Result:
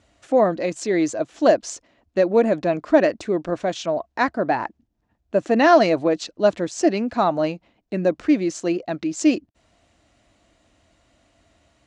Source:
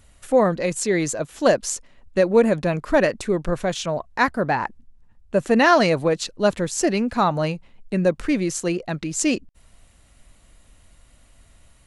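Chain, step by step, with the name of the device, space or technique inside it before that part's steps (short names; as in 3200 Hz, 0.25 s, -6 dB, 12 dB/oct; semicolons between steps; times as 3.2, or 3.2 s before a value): car door speaker (speaker cabinet 86–6900 Hz, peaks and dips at 150 Hz -6 dB, 310 Hz +9 dB, 670 Hz +8 dB); gain -3 dB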